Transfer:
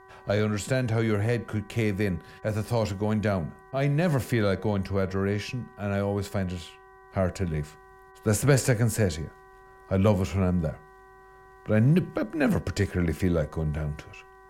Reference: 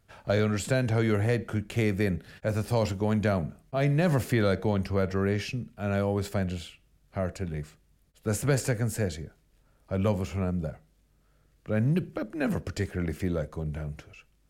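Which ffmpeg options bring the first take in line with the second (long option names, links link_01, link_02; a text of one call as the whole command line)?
ffmpeg -i in.wav -af "bandreject=frequency=381:width_type=h:width=4,bandreject=frequency=762:width_type=h:width=4,bandreject=frequency=1143:width_type=h:width=4,bandreject=frequency=1524:width_type=h:width=4,bandreject=frequency=1905:width_type=h:width=4,bandreject=frequency=1000:width=30,asetnsamples=nb_out_samples=441:pad=0,asendcmd='7.11 volume volume -4.5dB',volume=0dB" out.wav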